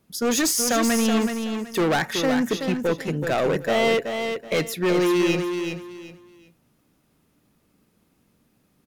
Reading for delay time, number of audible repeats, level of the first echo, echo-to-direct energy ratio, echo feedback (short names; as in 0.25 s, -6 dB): 0.376 s, 3, -6.5 dB, -6.0 dB, 25%